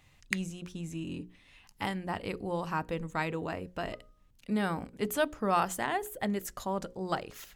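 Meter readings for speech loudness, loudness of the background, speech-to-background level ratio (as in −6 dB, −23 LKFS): −34.5 LKFS, −37.5 LKFS, 3.0 dB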